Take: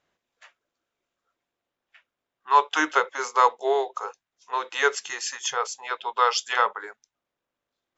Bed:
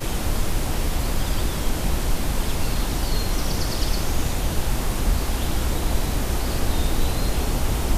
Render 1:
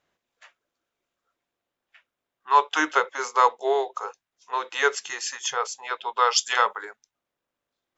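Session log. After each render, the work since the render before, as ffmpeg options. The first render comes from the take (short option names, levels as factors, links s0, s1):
-filter_complex "[0:a]asettb=1/sr,asplit=3[s0][s1][s2];[s0]atrim=end=6.364[s3];[s1]atrim=start=6.36:end=6.85,asetpts=PTS-STARTPTS,afade=t=in:d=0.004:c=qsin,afade=t=out:st=0.486:d=0.004:c=qsin,highshelf=f=4900:g=11[s4];[s2]atrim=start=6.846[s5];[s3][s4]acrossfade=d=0.004:c1=hsin:c2=qsin[s6];[s6][s5]acrossfade=d=0.004:c1=qsin:c2=hsin"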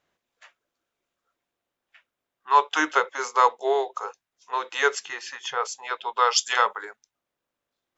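-filter_complex "[0:a]asettb=1/sr,asplit=3[s0][s1][s2];[s0]atrim=end=5.054[s3];[s1]atrim=start=5.05:end=5.63,asetpts=PTS-STARTPTS,afade=t=in:d=0.004:c=qsin,afade=t=out:st=0.576:d=0.004:c=qsin,lowpass=3600[s4];[s2]atrim=start=5.626[s5];[s3][s4]acrossfade=d=0.004:c1=hsin:c2=qsin[s6];[s6][s5]acrossfade=d=0.004:c1=qsin:c2=hsin"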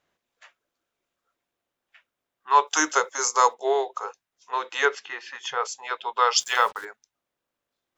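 -filter_complex "[0:a]asettb=1/sr,asplit=3[s0][s1][s2];[s0]atrim=end=2.674[s3];[s1]atrim=start=2.67:end=3.54,asetpts=PTS-STARTPTS,afade=t=in:d=0.004:c=qsin,afade=t=out:st=0.866:d=0.004:c=qsin,highshelf=f=4400:t=q:w=1.5:g=11[s4];[s2]atrim=start=3.536[s5];[s3][s4]acrossfade=d=0.004:c1=hsin:c2=qsin[s6];[s6][s5]acrossfade=d=0.004:c1=qsin:c2=hsin,asettb=1/sr,asplit=3[s7][s8][s9];[s7]atrim=end=4.854[s10];[s8]atrim=start=4.85:end=5.35,asetpts=PTS-STARTPTS,afade=t=in:d=0.004:c=qsin,afade=t=out:st=0.496:d=0.004:c=qsin,highpass=190,lowpass=3600[s11];[s9]atrim=start=5.346[s12];[s10][s11]acrossfade=d=0.004:c1=hsin:c2=qsin[s13];[s13][s12]acrossfade=d=0.004:c1=qsin:c2=hsin,asettb=1/sr,asplit=3[s14][s15][s16];[s14]atrim=end=6.404[s17];[s15]atrim=start=6.4:end=6.85,asetpts=PTS-STARTPTS,afade=t=in:d=0.004:c=qsin,afade=t=out:st=0.446:d=0.004:c=qsin,acrusher=bits=6:mix=0:aa=0.5[s18];[s16]atrim=start=6.846[s19];[s17][s18]acrossfade=d=0.004:c1=hsin:c2=qsin[s20];[s20][s19]acrossfade=d=0.004:c1=qsin:c2=hsin"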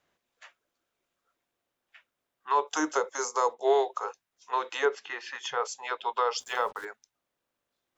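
-filter_complex "[0:a]acrossover=split=550|1000[s0][s1][s2];[s1]alimiter=limit=0.075:level=0:latency=1:release=170[s3];[s2]acompressor=threshold=0.0224:ratio=6[s4];[s0][s3][s4]amix=inputs=3:normalize=0"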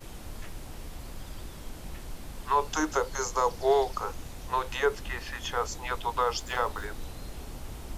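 -filter_complex "[1:a]volume=0.126[s0];[0:a][s0]amix=inputs=2:normalize=0"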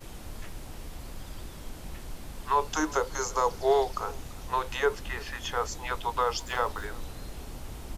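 -filter_complex "[0:a]asplit=2[s0][s1];[s1]adelay=338.2,volume=0.0794,highshelf=f=4000:g=-7.61[s2];[s0][s2]amix=inputs=2:normalize=0"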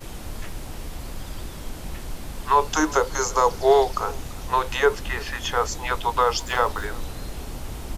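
-af "volume=2.24"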